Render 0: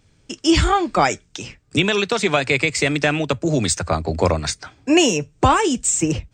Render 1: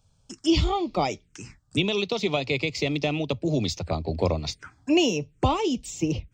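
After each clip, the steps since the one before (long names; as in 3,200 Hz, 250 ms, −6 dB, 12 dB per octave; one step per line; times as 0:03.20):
phaser swept by the level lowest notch 330 Hz, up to 1,600 Hz, full sweep at −18.5 dBFS
level −5 dB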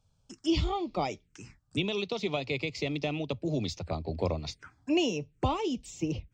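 high-shelf EQ 8,000 Hz −7.5 dB
level −6 dB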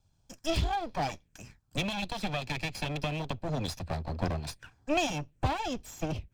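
lower of the sound and its delayed copy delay 1.2 ms
level +1 dB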